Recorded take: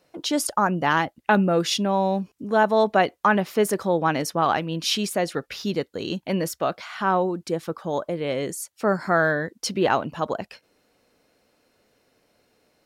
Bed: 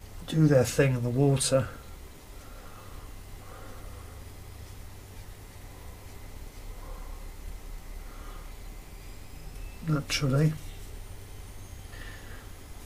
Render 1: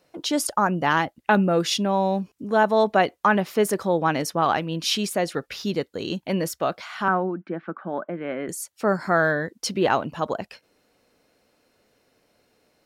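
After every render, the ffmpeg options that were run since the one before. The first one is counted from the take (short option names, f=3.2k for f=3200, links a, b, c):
-filter_complex "[0:a]asettb=1/sr,asplit=3[a][b][c];[a]atrim=end=7.084[d];[b]atrim=start=7.08:end=8.49,asetpts=PTS-STARTPTS,afade=t=in:d=0.004:c=qsin,afade=t=out:st=1.406:d=0.004:c=qsin,highpass=f=190:w=0.5412,highpass=f=190:w=1.3066,equalizer=f=190:t=q:w=4:g=4,equalizer=f=480:t=q:w=4:g=-9,equalizer=f=950:t=q:w=4:g=-4,equalizer=f=1.5k:t=q:w=4:g=7,lowpass=f=2.2k:w=0.5412,lowpass=f=2.2k:w=1.3066[e];[c]atrim=start=8.486[f];[d][e]acrossfade=d=0.004:c1=hsin:c2=qsin[g];[g][f]acrossfade=d=0.004:c1=qsin:c2=hsin"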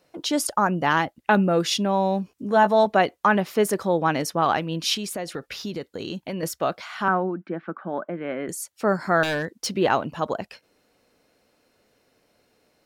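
-filter_complex "[0:a]asettb=1/sr,asplit=3[a][b][c];[a]atrim=end=2.304[d];[b]atrim=start=2.3:end=2.86,asetpts=PTS-STARTPTS,afade=t=in:d=0.004:c=qsin,afade=t=out:st=0.556:d=0.004:c=qsin,asplit=2[e][f];[f]adelay=15,volume=-6dB[g];[e][g]amix=inputs=2:normalize=0,atrim=end_sample=24696[h];[c]atrim=start=2.856[i];[d][h]acrossfade=d=0.004:c1=hsin:c2=qsin[j];[j][i]acrossfade=d=0.004:c1=qsin:c2=hsin,asettb=1/sr,asplit=3[k][l][m];[k]atrim=end=4.944[n];[l]atrim=start=4.94:end=6.43,asetpts=PTS-STARTPTS,afade=t=in:d=0.004:c=qsin,afade=t=out:st=1.486:d=0.004:c=qsin,acompressor=threshold=-27dB:ratio=4:attack=3.2:release=140:knee=1:detection=peak[o];[m]atrim=start=6.426[p];[n][o]acrossfade=d=0.004:c1=hsin:c2=qsin[q];[q][p]acrossfade=d=0.004:c1=qsin:c2=hsin,asettb=1/sr,asplit=3[r][s][t];[r]atrim=end=9.234[u];[s]atrim=start=9.23:end=9.71,asetpts=PTS-STARTPTS,afade=t=in:d=0.004:c=qsin,afade=t=out:st=0.476:d=0.004:c=qsin,aeval=exprs='0.106*(abs(mod(val(0)/0.106+3,4)-2)-1)':c=same[v];[t]atrim=start=9.706[w];[u][v]acrossfade=d=0.004:c1=hsin:c2=qsin[x];[x][w]acrossfade=d=0.004:c1=qsin:c2=hsin"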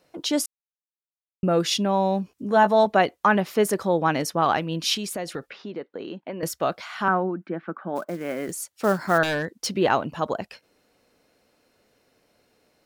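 -filter_complex "[0:a]asettb=1/sr,asplit=3[a][b][c];[a]atrim=end=5.504[d];[b]atrim=start=5.5:end=6.43,asetpts=PTS-STARTPTS,afade=t=in:d=0.004:c=qsin,afade=t=out:st=0.926:d=0.004:c=qsin,highpass=260,lowpass=2k[e];[c]atrim=start=6.426[f];[d][e]acrossfade=d=0.004:c1=hsin:c2=qsin[g];[g][f]acrossfade=d=0.004:c1=qsin:c2=hsin,asplit=3[h][i][j];[h]afade=t=out:st=7.95:d=0.02[k];[i]acrusher=bits=5:mode=log:mix=0:aa=0.000001,afade=t=in:st=7.95:d=0.02,afade=t=out:st=9.17:d=0.02[l];[j]afade=t=in:st=9.17:d=0.02[m];[k][l][m]amix=inputs=3:normalize=0,asplit=3[n][o][p];[n]atrim=end=0.46,asetpts=PTS-STARTPTS,afade=t=out:st=0.456:d=0.004:c=hsin[q];[o]atrim=start=0.46:end=1.43,asetpts=PTS-STARTPTS,volume=0[r];[p]atrim=start=1.43,asetpts=PTS-STARTPTS,afade=t=in:d=0.004:c=hsin[s];[q][r][s]concat=n=3:v=0:a=1"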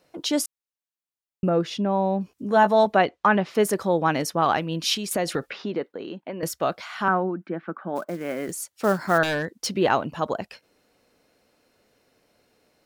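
-filter_complex "[0:a]asettb=1/sr,asplit=3[a][b][c];[a]atrim=end=1.494[d];[b]atrim=start=1.49:end=2.21,asetpts=PTS-STARTPTS,afade=t=in:d=0.004:c=qsin,afade=t=out:st=0.716:d=0.004:c=qsin,lowpass=f=1.2k:p=1[e];[c]atrim=start=2.206[f];[d][e]acrossfade=d=0.004:c1=hsin:c2=qsin[g];[g][f]acrossfade=d=0.004:c1=qsin:c2=hsin,asettb=1/sr,asplit=3[h][i][j];[h]atrim=end=2.954[k];[i]atrim=start=2.95:end=3.55,asetpts=PTS-STARTPTS,afade=t=in:d=0.004:c=qsin,afade=t=out:st=0.596:d=0.004:c=qsin,lowpass=4.7k[l];[j]atrim=start=3.546[m];[k][l]acrossfade=d=0.004:c1=hsin:c2=qsin[n];[n][m]acrossfade=d=0.004:c1=qsin:c2=hsin,asettb=1/sr,asplit=3[o][p][q];[o]atrim=end=5.114[r];[p]atrim=start=5.11:end=5.92,asetpts=PTS-STARTPTS,afade=t=in:d=0.004:c=qsin,afade=t=out:st=0.806:d=0.004:c=qsin,acontrast=51[s];[q]atrim=start=5.916[t];[r][s]acrossfade=d=0.004:c1=hsin:c2=qsin[u];[u][t]acrossfade=d=0.004:c1=qsin:c2=hsin"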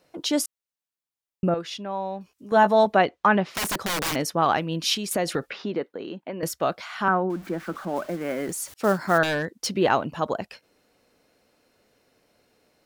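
-filter_complex "[0:a]asettb=1/sr,asplit=3[a][b][c];[a]atrim=end=1.544[d];[b]atrim=start=1.54:end=2.52,asetpts=PTS-STARTPTS,afade=t=in:d=0.004:c=qsin,afade=t=out:st=0.976:d=0.004:c=qsin,equalizer=f=190:w=0.32:g=-12.5[e];[c]atrim=start=2.516[f];[d][e]acrossfade=d=0.004:c1=hsin:c2=qsin[g];[g][f]acrossfade=d=0.004:c1=qsin:c2=hsin,asplit=3[h][i][j];[h]afade=t=out:st=3.45:d=0.02[k];[i]aeval=exprs='(mod(11.2*val(0)+1,2)-1)/11.2':c=same,afade=t=in:st=3.45:d=0.02,afade=t=out:st=4.14:d=0.02[l];[j]afade=t=in:st=4.14:d=0.02[m];[k][l][m]amix=inputs=3:normalize=0,asettb=1/sr,asplit=3[n][o][p];[n]atrim=end=7.304[q];[o]atrim=start=7.3:end=8.74,asetpts=PTS-STARTPTS,afade=t=in:d=0.004:c=qsin,afade=t=out:st=1.436:d=0.004:c=qsin,aeval=exprs='val(0)+0.5*0.01*sgn(val(0))':c=same[r];[p]atrim=start=8.736[s];[q][r]acrossfade=d=0.004:c1=hsin:c2=qsin[t];[t][s]acrossfade=d=0.004:c1=qsin:c2=hsin"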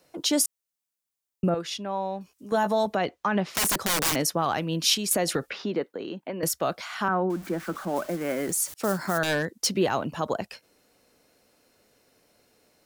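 -filter_complex "[0:a]acrossover=split=150|5500[a][b][c];[b]alimiter=limit=-15dB:level=0:latency=1:release=82[d];[c]acontrast=56[e];[a][d][e]amix=inputs=3:normalize=0"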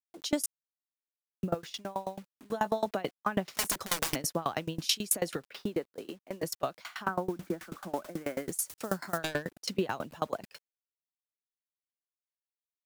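-af "acrusher=bits=7:mix=0:aa=0.000001,aeval=exprs='val(0)*pow(10,-25*if(lt(mod(9.2*n/s,1),2*abs(9.2)/1000),1-mod(9.2*n/s,1)/(2*abs(9.2)/1000),(mod(9.2*n/s,1)-2*abs(9.2)/1000)/(1-2*abs(9.2)/1000))/20)':c=same"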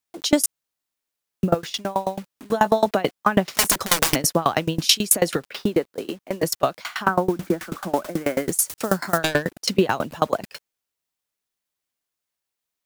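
-af "volume=12dB,alimiter=limit=-1dB:level=0:latency=1"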